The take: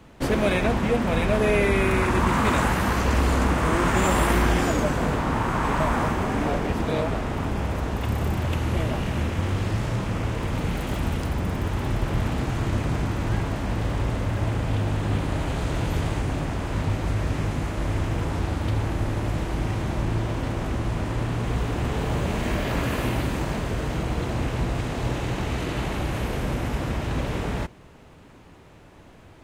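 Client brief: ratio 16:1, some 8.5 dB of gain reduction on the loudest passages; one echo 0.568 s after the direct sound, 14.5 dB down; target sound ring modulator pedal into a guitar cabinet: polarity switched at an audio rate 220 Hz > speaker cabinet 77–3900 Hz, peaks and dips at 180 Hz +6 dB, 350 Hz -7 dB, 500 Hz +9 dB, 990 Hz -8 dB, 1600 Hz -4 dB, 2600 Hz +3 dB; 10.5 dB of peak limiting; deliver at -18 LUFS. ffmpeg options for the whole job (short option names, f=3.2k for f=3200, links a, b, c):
-af "acompressor=threshold=-25dB:ratio=16,alimiter=level_in=3dB:limit=-24dB:level=0:latency=1,volume=-3dB,aecho=1:1:568:0.188,aeval=exprs='val(0)*sgn(sin(2*PI*220*n/s))':c=same,highpass=77,equalizer=f=180:t=q:w=4:g=6,equalizer=f=350:t=q:w=4:g=-7,equalizer=f=500:t=q:w=4:g=9,equalizer=f=990:t=q:w=4:g=-8,equalizer=f=1.6k:t=q:w=4:g=-4,equalizer=f=2.6k:t=q:w=4:g=3,lowpass=f=3.9k:w=0.5412,lowpass=f=3.9k:w=1.3066,volume=16.5dB"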